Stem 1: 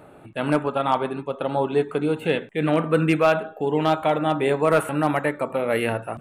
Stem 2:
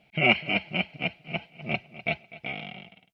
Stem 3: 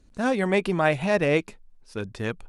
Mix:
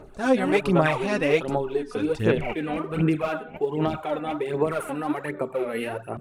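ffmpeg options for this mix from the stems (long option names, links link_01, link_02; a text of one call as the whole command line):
ffmpeg -i stem1.wav -i stem2.wav -i stem3.wav -filter_complex "[0:a]equalizer=frequency=390:width=7.7:gain=11.5,alimiter=limit=-12.5dB:level=0:latency=1:release=22,volume=-7.5dB[link_01];[1:a]tremolo=f=250:d=0.667,lowpass=1200,adelay=2200,volume=-3dB[link_02];[2:a]volume=-2dB[link_03];[link_01][link_02][link_03]amix=inputs=3:normalize=0,aphaser=in_gain=1:out_gain=1:delay=4.1:decay=0.63:speed=1.3:type=sinusoidal" out.wav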